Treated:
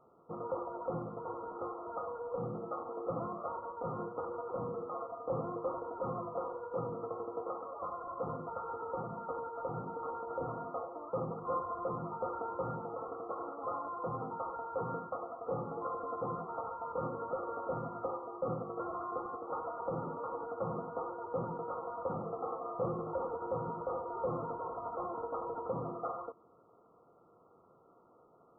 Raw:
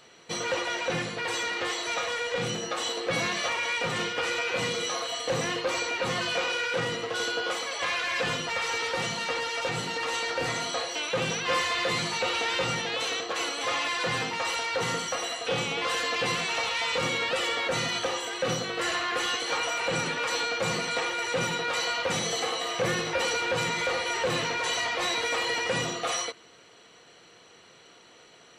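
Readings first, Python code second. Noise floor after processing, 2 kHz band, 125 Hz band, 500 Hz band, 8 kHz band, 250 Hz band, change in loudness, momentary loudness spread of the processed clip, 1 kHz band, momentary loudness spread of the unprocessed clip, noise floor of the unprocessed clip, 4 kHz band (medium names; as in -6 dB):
-64 dBFS, -31.5 dB, -6.5 dB, -6.5 dB, under -40 dB, -6.5 dB, -11.5 dB, 4 LU, -7.0 dB, 3 LU, -54 dBFS, under -40 dB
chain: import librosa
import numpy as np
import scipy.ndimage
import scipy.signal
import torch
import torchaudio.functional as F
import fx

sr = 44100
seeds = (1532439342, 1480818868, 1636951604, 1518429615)

y = fx.brickwall_lowpass(x, sr, high_hz=1400.0)
y = y * librosa.db_to_amplitude(-6.5)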